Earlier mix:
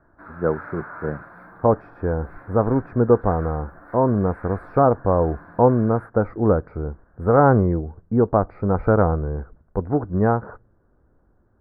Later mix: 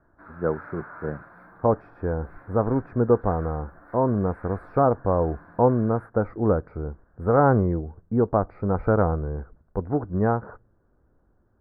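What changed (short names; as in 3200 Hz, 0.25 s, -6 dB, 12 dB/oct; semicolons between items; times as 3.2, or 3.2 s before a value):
speech -3.5 dB; background -5.0 dB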